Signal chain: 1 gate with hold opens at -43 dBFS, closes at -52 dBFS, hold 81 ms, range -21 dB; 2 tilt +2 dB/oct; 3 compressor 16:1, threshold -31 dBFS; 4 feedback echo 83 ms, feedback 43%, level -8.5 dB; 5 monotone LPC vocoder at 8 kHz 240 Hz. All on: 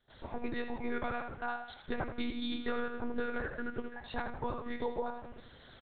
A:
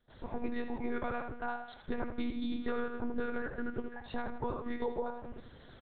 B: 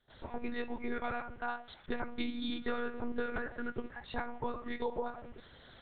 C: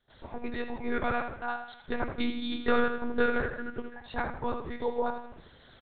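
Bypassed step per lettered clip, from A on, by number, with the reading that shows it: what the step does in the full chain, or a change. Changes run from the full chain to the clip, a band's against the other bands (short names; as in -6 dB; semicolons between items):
2, 4 kHz band -6.5 dB; 4, 125 Hz band -2.5 dB; 3, mean gain reduction 3.0 dB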